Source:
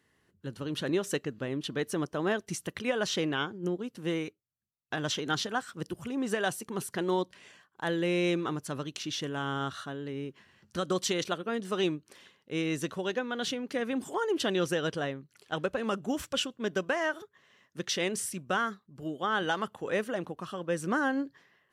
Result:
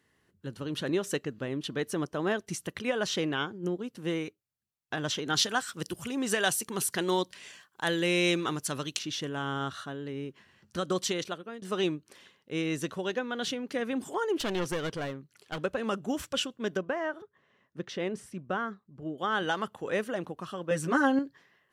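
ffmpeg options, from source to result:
-filter_complex "[0:a]asettb=1/sr,asplit=3[a][b][c];[a]atrim=end=5.354[d];[b]atrim=start=5.35:end=8.99,asetpts=PTS-STARTPTS,afade=t=in:d=0.004:c=qsin,afade=t=out:st=3.636:d=0.004:c=qsin,highshelf=f=2.1k:g=10.5[e];[c]atrim=start=8.986[f];[d][e]acrossfade=d=0.004:c1=hsin:c2=qsin[g];[g][f]acrossfade=d=0.004:c1=qsin:c2=hsin,asettb=1/sr,asplit=3[h][i][j];[h]atrim=end=14.404[k];[i]atrim=start=14.4:end=15.59,asetpts=PTS-STARTPTS,afade=t=in:d=0.004:c=qsin,afade=t=out:st=1.186:d=0.004:c=qsin,aeval=exprs='clip(val(0),-1,0.0211)':c=same[l];[j]atrim=start=15.586[m];[k][l]acrossfade=d=0.004:c1=hsin:c2=qsin[n];[n][m]acrossfade=d=0.004:c1=qsin:c2=hsin,asettb=1/sr,asplit=3[o][p][q];[o]atrim=end=16.774[r];[p]atrim=start=16.77:end=19.18,asetpts=PTS-STARTPTS,afade=t=in:d=0.004:c=qsin,afade=t=out:st=2.406:d=0.004:c=qsin,lowpass=f=1.1k:p=1[s];[q]atrim=start=19.176[t];[r][s]acrossfade=d=0.004:c1=hsin:c2=qsin[u];[u][t]acrossfade=d=0.004:c1=qsin:c2=hsin,asettb=1/sr,asplit=3[v][w][x];[v]atrim=end=20.704[y];[w]atrim=start=20.7:end=21.19,asetpts=PTS-STARTPTS,afade=t=in:d=0.004:c=qsin,afade=t=out:st=0.486:d=0.004:c=qsin,aecho=1:1:7.3:0.98,atrim=end_sample=21609[z];[x]atrim=start=21.186[aa];[y][z]acrossfade=d=0.004:c1=hsin:c2=qsin[ab];[ab][aa]acrossfade=d=0.004:c1=qsin:c2=hsin,asplit=2[ac][ad];[ac]atrim=end=11.62,asetpts=PTS-STARTPTS,afade=t=out:st=11.04:d=0.58:silence=0.211349[ae];[ad]atrim=start=11.62,asetpts=PTS-STARTPTS,afade=t=in:d=0.004:c=hsin:silence=0.211349[af];[ae][af]concat=n=2:v=0:a=1"

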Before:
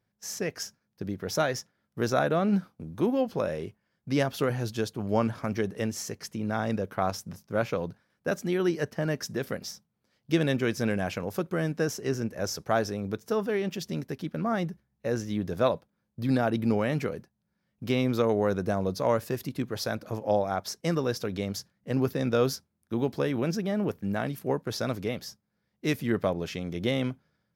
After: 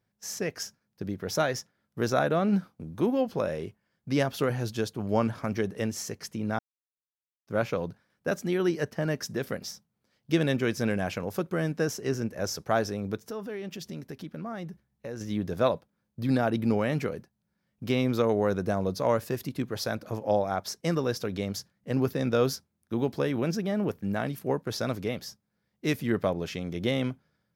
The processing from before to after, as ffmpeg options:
-filter_complex "[0:a]asettb=1/sr,asplit=3[a][b][c];[a]atrim=end=13.204[d];[b]atrim=start=13.2:end=15.21,asetpts=PTS-STARTPTS,afade=t=in:d=0.004:c=qsin,afade=t=out:st=2.006:d=0.004:c=qsin,acompressor=threshold=-37dB:ratio=2.5:attack=3.2:release=140:knee=1:detection=peak[e];[c]atrim=start=15.206[f];[d][e]acrossfade=d=0.004:c1=hsin:c2=qsin[g];[g][f]acrossfade=d=0.004:c1=qsin:c2=hsin,asplit=3[h][i][j];[h]atrim=end=6.59,asetpts=PTS-STARTPTS,afade=t=out:st=6.586:d=0.004:c=hsin[k];[i]atrim=start=6.59:end=7.47,asetpts=PTS-STARTPTS,volume=0[l];[j]atrim=start=7.47,asetpts=PTS-STARTPTS,afade=t=in:d=0.004:c=hsin[m];[k][l][m]concat=n=3:v=0:a=1"

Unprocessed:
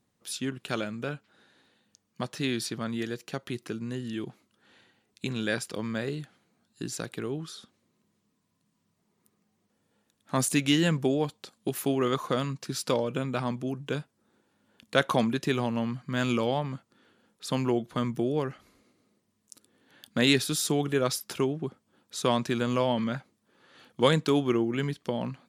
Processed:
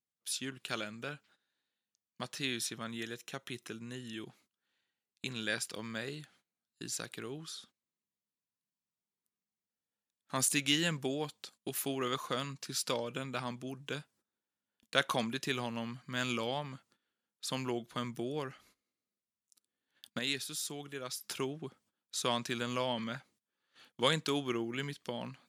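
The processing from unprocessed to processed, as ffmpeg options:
-filter_complex "[0:a]asettb=1/sr,asplit=3[a][b][c];[a]atrim=end=2.454[d];[b]atrim=start=2.45:end=4.26,asetpts=PTS-STARTPTS,afade=t=in:d=0.004:c=qsin,afade=t=out:st=1.806:d=0.004:c=qsin,asuperstop=centerf=4600:order=4:qfactor=7.5[e];[c]atrim=start=4.256[f];[d][e]acrossfade=d=0.004:c1=hsin:c2=qsin[g];[g][f]acrossfade=d=0.004:c1=qsin:c2=hsin,asplit=3[h][i][j];[h]atrim=end=20.192[k];[i]atrim=start=20.188:end=21.242,asetpts=PTS-STARTPTS,volume=-8dB[l];[j]atrim=start=21.238[m];[k][l]acrossfade=d=0.004:c1=hsin:c2=hsin[n];[n][m]acrossfade=d=0.004:c1=hsin:c2=hsin,highshelf=f=2.1k:g=-8.5,agate=range=-18dB:threshold=-58dB:ratio=16:detection=peak,tiltshelf=f=1.5k:g=-9.5,volume=-1.5dB"

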